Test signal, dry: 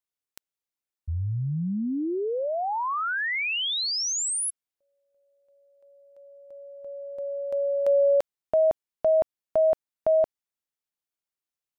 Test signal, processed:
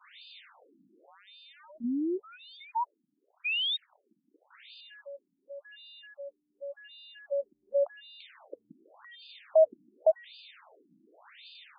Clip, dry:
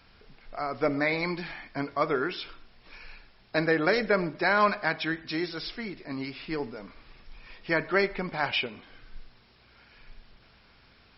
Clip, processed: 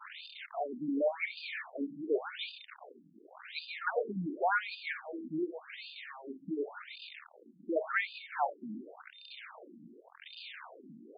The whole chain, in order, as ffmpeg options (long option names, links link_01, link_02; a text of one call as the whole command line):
ffmpeg -i in.wav -af "aeval=exprs='val(0)+0.5*0.0299*sgn(val(0))':channel_layout=same,adynamicequalizer=threshold=0.02:dfrequency=650:dqfactor=1.9:tfrequency=650:tqfactor=1.9:attack=5:release=100:ratio=0.4:range=3:mode=boostabove:tftype=bell,aeval=exprs='val(0)+0.00398*sin(2*PI*3600*n/s)':channel_layout=same,afftfilt=real='re*between(b*sr/1024,230*pow(3500/230,0.5+0.5*sin(2*PI*0.89*pts/sr))/1.41,230*pow(3500/230,0.5+0.5*sin(2*PI*0.89*pts/sr))*1.41)':imag='im*between(b*sr/1024,230*pow(3500/230,0.5+0.5*sin(2*PI*0.89*pts/sr))/1.41,230*pow(3500/230,0.5+0.5*sin(2*PI*0.89*pts/sr))*1.41)':win_size=1024:overlap=0.75,volume=-4.5dB" out.wav